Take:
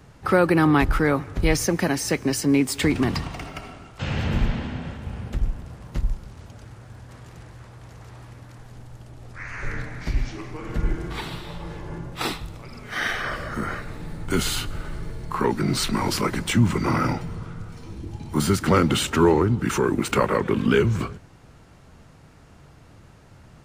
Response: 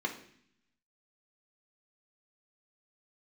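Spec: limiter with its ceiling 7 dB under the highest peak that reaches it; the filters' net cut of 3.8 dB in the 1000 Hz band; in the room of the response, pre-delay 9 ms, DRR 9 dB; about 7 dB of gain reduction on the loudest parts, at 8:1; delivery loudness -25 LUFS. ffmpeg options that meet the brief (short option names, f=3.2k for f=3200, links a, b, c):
-filter_complex "[0:a]equalizer=f=1k:t=o:g=-5,acompressor=threshold=-21dB:ratio=8,alimiter=limit=-18dB:level=0:latency=1,asplit=2[a][b];[1:a]atrim=start_sample=2205,adelay=9[c];[b][c]afir=irnorm=-1:irlink=0,volume=-14dB[d];[a][d]amix=inputs=2:normalize=0,volume=4.5dB"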